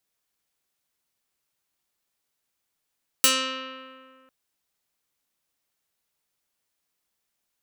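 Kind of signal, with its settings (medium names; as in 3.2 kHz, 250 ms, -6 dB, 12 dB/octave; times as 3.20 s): plucked string C4, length 1.05 s, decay 2.04 s, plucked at 0.32, medium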